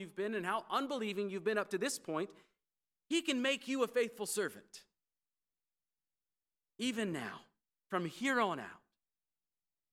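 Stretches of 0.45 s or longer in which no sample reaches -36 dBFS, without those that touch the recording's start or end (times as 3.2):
2.25–3.11
4.48–6.81
7.34–7.93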